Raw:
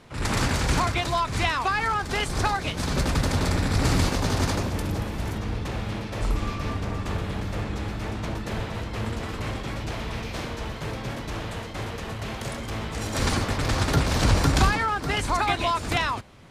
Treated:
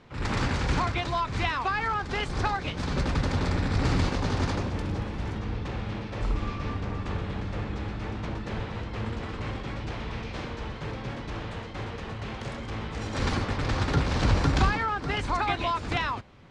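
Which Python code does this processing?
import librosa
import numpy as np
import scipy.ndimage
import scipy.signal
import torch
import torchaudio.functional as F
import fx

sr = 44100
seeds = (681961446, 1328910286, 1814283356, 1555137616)

y = fx.air_absorb(x, sr, metres=110.0)
y = fx.notch(y, sr, hz=650.0, q=16.0)
y = y * 10.0 ** (-2.5 / 20.0)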